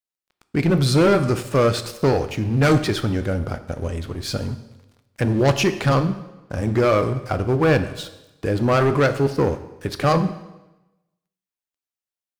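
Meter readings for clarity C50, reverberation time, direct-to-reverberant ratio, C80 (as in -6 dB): 13.0 dB, 1.0 s, 10.5 dB, 14.5 dB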